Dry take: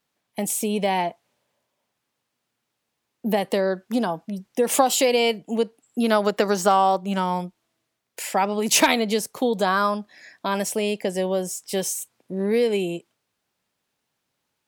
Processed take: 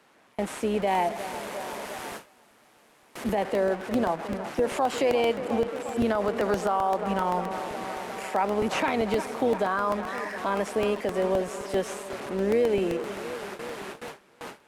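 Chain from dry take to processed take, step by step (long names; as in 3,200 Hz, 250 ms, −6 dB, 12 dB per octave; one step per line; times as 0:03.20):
linear delta modulator 64 kbit/s, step −28.5 dBFS
three-way crossover with the lows and the highs turned down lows −13 dB, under 200 Hz, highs −14 dB, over 2,400 Hz
tape delay 355 ms, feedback 81%, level −14 dB, low-pass 2,900 Hz
brickwall limiter −16.5 dBFS, peak gain reduction 11 dB
amplitude modulation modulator 140 Hz, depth 20%
noise gate with hold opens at −28 dBFS
0:00.87–0:03.35: high-shelf EQ 6,500 Hz +9 dB
regular buffer underruns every 0.13 s, samples 64, repeat, from 0:00.82
level +1.5 dB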